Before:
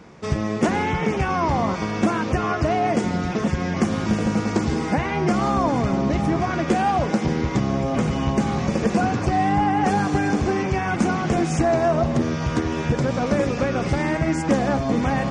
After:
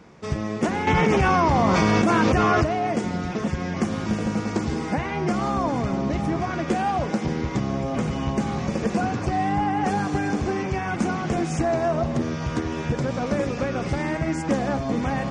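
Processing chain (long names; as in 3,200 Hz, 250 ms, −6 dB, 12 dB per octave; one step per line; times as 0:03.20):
0:00.87–0:02.64: envelope flattener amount 100%
level −3.5 dB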